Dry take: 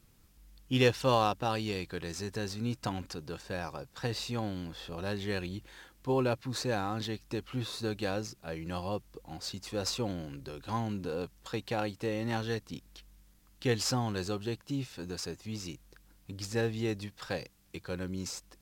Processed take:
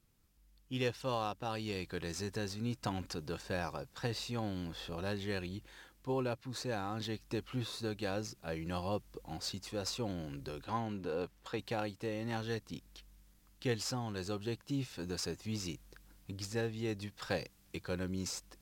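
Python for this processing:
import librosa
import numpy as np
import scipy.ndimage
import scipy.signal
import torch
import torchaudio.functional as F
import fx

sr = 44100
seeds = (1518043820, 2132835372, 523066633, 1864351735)

y = fx.bass_treble(x, sr, bass_db=-5, treble_db=-7, at=(10.64, 11.59))
y = fx.rider(y, sr, range_db=5, speed_s=0.5)
y = F.gain(torch.from_numpy(y), -4.5).numpy()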